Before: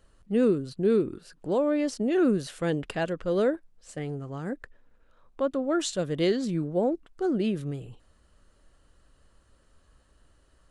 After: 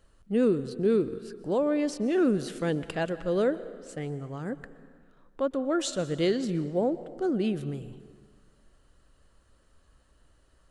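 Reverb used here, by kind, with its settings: plate-style reverb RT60 1.8 s, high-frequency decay 0.7×, pre-delay 0.11 s, DRR 15 dB; gain -1 dB

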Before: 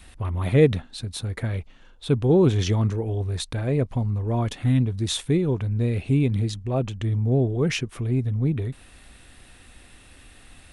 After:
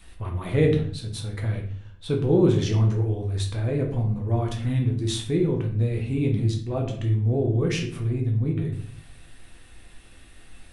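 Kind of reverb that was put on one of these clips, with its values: shoebox room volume 77 m³, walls mixed, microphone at 0.7 m; gain -5 dB

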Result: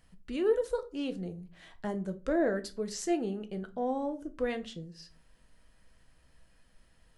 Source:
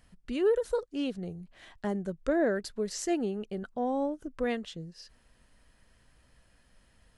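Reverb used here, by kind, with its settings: shoebox room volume 160 m³, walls furnished, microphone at 0.65 m; gain -2.5 dB

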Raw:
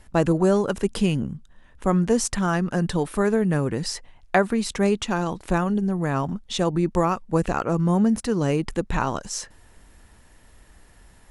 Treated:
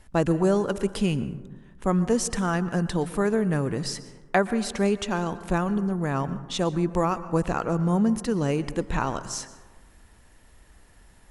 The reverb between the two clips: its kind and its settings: plate-style reverb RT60 1.3 s, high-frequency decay 0.35×, pre-delay 0.105 s, DRR 14 dB; gain -2.5 dB

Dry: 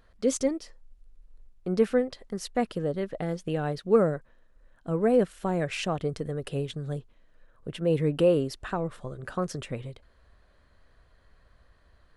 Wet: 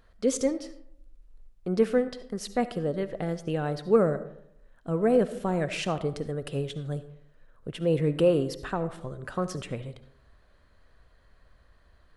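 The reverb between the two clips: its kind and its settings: digital reverb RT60 0.72 s, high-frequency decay 0.45×, pre-delay 30 ms, DRR 12.5 dB

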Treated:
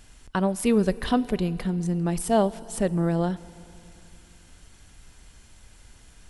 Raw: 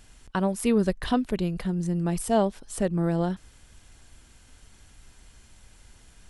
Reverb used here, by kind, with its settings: FDN reverb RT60 2.9 s, low-frequency decay 1.25×, high-frequency decay 0.9×, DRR 17.5 dB; gain +1.5 dB

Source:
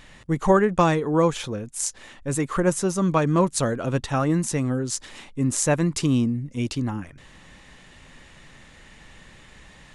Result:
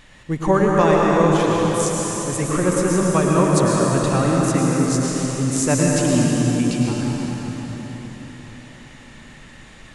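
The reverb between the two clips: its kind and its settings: plate-style reverb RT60 4.7 s, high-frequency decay 0.85×, pre-delay 90 ms, DRR -3.5 dB

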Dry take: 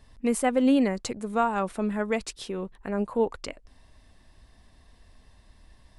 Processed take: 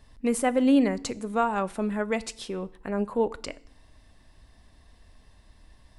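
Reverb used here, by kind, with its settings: FDN reverb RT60 0.62 s, low-frequency decay 1.35×, high-frequency decay 0.95×, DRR 16.5 dB

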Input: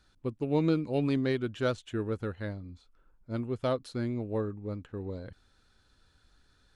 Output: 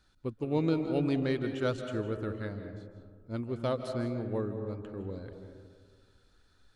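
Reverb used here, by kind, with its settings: digital reverb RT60 1.7 s, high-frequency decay 0.3×, pre-delay 0.12 s, DRR 7 dB; gain -2 dB

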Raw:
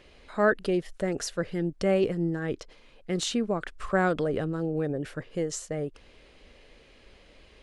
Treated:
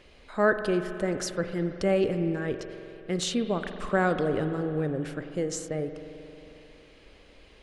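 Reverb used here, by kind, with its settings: spring tank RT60 3.1 s, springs 45 ms, chirp 80 ms, DRR 8 dB

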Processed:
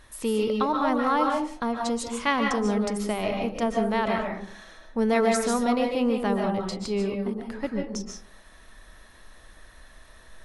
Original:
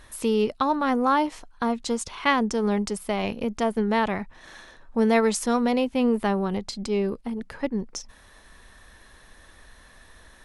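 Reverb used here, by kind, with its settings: digital reverb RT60 0.5 s, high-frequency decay 0.4×, pre-delay 0.105 s, DRR 1 dB; gain -3 dB

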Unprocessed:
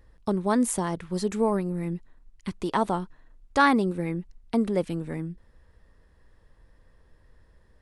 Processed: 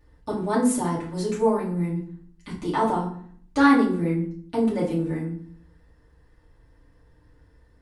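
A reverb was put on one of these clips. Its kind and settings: FDN reverb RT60 0.54 s, low-frequency decay 1.5×, high-frequency decay 0.7×, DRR -7 dB; gain -6.5 dB

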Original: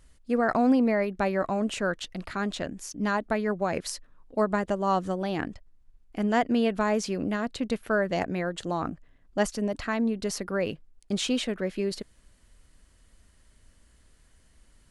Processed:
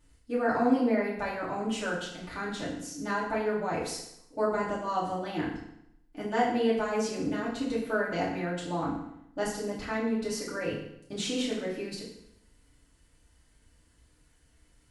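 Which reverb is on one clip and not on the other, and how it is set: FDN reverb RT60 0.78 s, low-frequency decay 1.1×, high-frequency decay 0.9×, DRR -7.5 dB; gain -10.5 dB

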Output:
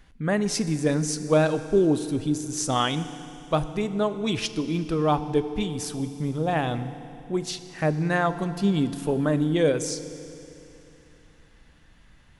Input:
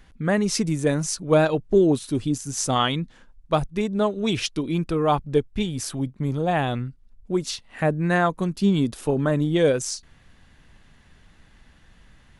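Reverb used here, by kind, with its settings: FDN reverb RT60 2.9 s, high-frequency decay 1×, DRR 11 dB; gain -2.5 dB

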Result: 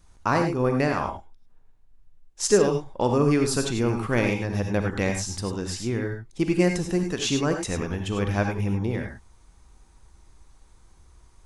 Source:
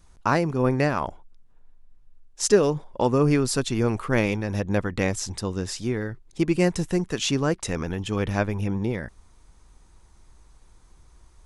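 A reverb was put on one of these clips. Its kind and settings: non-linear reverb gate 0.12 s rising, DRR 4 dB; gain -1.5 dB

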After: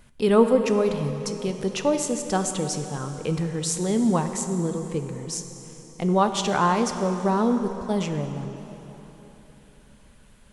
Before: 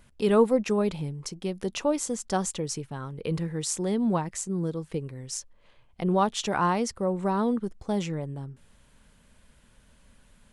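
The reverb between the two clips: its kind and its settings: plate-style reverb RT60 3.8 s, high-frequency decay 0.8×, DRR 6.5 dB; gain +3 dB

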